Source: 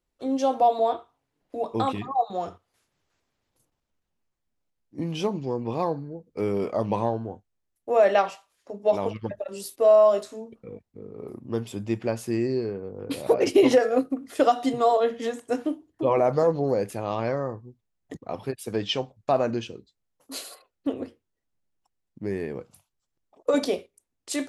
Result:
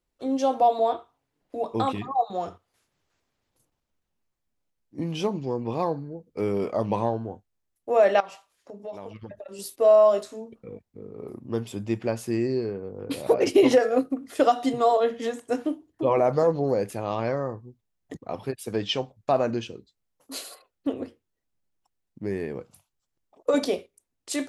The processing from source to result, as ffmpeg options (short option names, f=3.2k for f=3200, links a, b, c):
-filter_complex "[0:a]asettb=1/sr,asplit=3[a][b][c];[a]atrim=end=8.204[d];[b]atrim=start=8.2:end=9.59,asetpts=PTS-STARTPTS,afade=t=in:d=0.004:c=qsin,afade=t=out:st=1.386:d=0.004:c=qsin,acompressor=threshold=-38dB:ratio=3:attack=3.2:release=140:knee=1:detection=peak[e];[c]atrim=start=9.586[f];[d][e]acrossfade=d=0.004:c1=hsin:c2=qsin[g];[g][f]acrossfade=d=0.004:c1=qsin:c2=hsin"